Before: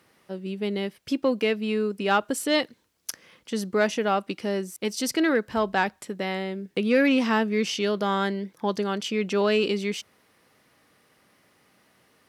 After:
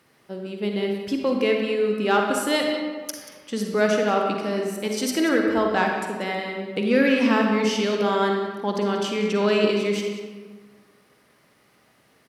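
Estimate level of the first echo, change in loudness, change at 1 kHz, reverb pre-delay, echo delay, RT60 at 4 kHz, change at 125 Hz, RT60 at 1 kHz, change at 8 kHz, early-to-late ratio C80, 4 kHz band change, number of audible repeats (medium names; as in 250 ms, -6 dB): -12.5 dB, +3.0 dB, +2.5 dB, 40 ms, 185 ms, 0.90 s, no reading, 1.6 s, +1.5 dB, 3.5 dB, +1.5 dB, 1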